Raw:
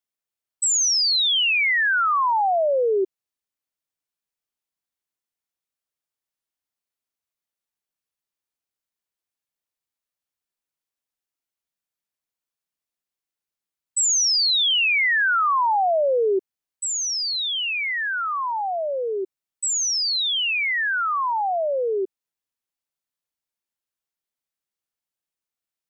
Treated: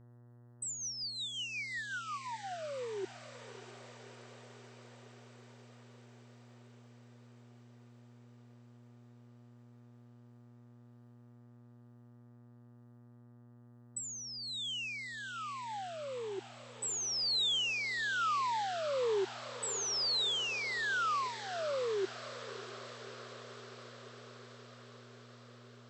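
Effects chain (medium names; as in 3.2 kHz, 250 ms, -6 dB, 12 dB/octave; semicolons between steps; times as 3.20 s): compressor with a negative ratio -24 dBFS, ratio -0.5; rotary cabinet horn 5.5 Hz, later 1.1 Hz, at 9.63 s; mains buzz 120 Hz, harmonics 16, -49 dBFS -9 dB/octave; on a send: echo that smears into a reverb 629 ms, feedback 72%, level -13.5 dB; on the sum: trim -9 dB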